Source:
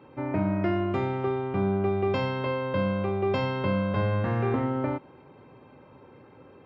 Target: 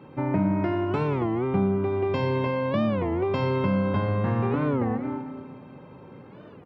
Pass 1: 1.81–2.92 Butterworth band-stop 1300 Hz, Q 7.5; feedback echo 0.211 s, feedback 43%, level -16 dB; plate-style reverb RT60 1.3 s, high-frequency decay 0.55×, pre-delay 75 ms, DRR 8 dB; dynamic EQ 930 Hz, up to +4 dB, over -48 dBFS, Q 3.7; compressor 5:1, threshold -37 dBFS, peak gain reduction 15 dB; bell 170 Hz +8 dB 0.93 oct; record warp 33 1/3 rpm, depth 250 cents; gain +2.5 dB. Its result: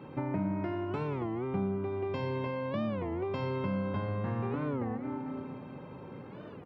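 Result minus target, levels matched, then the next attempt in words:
compressor: peak gain reduction +9 dB
1.81–2.92 Butterworth band-stop 1300 Hz, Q 7.5; feedback echo 0.211 s, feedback 43%, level -16 dB; plate-style reverb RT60 1.3 s, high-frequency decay 0.55×, pre-delay 75 ms, DRR 8 dB; dynamic EQ 930 Hz, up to +4 dB, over -48 dBFS, Q 3.7; compressor 5:1, threshold -26 dBFS, peak gain reduction 6 dB; bell 170 Hz +8 dB 0.93 oct; record warp 33 1/3 rpm, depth 250 cents; gain +2.5 dB

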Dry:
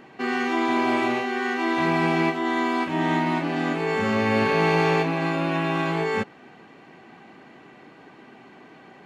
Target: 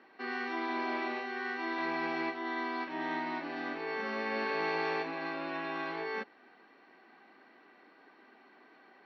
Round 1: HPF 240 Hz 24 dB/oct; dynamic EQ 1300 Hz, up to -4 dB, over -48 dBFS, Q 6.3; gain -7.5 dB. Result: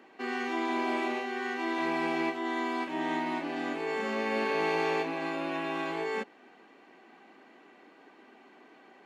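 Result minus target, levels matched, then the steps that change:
8000 Hz band +9.0 dB
add after dynamic EQ: rippled Chebyshev low-pass 5800 Hz, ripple 6 dB

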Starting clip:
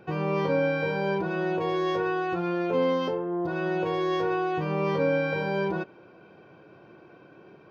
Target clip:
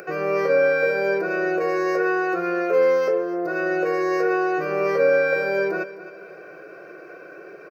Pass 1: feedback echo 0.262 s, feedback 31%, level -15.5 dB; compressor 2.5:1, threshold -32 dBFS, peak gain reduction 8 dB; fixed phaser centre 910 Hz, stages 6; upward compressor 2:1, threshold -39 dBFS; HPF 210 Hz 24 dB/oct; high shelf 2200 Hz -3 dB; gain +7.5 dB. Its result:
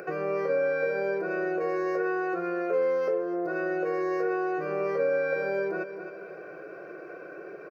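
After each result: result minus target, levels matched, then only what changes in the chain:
compressor: peak gain reduction +8 dB; 4000 Hz band -5.5 dB
remove: compressor 2.5:1, threshold -32 dBFS, peak gain reduction 8 dB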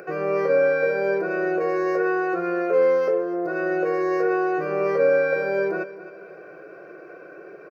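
4000 Hz band -6.0 dB
change: high shelf 2200 Hz +6 dB

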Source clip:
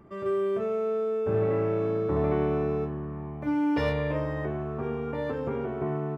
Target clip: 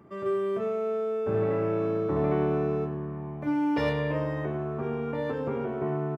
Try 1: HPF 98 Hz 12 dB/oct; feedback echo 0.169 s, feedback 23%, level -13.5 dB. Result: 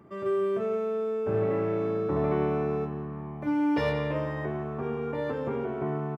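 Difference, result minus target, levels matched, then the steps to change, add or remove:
echo 66 ms late
change: feedback echo 0.103 s, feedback 23%, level -13.5 dB

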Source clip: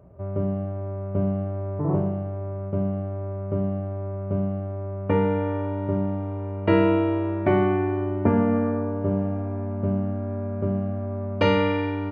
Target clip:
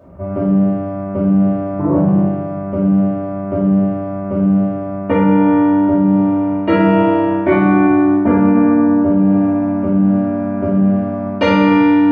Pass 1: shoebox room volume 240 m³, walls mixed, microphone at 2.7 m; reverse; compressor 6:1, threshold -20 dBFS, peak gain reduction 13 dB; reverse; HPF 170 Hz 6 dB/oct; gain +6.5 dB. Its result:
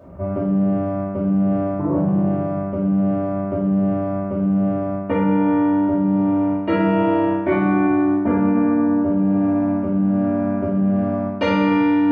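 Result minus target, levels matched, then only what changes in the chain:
compressor: peak gain reduction +6 dB
change: compressor 6:1, threshold -13 dBFS, peak gain reduction 7 dB

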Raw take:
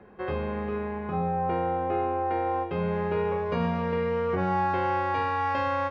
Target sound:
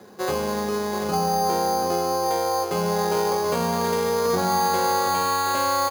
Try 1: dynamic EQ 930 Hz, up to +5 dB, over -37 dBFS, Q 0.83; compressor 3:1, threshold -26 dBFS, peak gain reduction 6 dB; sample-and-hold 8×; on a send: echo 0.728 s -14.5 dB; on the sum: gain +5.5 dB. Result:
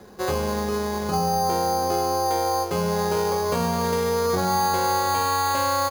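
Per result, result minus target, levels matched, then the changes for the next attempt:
echo-to-direct -6.5 dB; 125 Hz band +3.0 dB
change: echo 0.728 s -8 dB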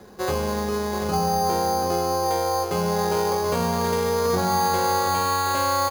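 125 Hz band +3.5 dB
add after dynamic EQ: HPF 140 Hz 12 dB/oct

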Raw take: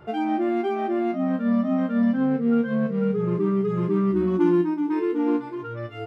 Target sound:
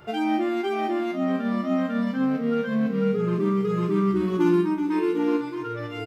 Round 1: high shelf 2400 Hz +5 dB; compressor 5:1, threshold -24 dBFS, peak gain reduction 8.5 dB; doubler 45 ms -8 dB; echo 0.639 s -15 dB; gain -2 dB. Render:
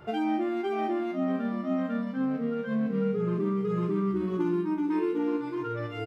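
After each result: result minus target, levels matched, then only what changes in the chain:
compressor: peak gain reduction +8.5 dB; 4000 Hz band -3.0 dB
remove: compressor 5:1, threshold -24 dBFS, peak gain reduction 8.5 dB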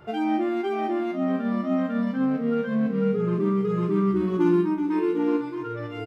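4000 Hz band -5.0 dB
change: high shelf 2400 Hz +13 dB

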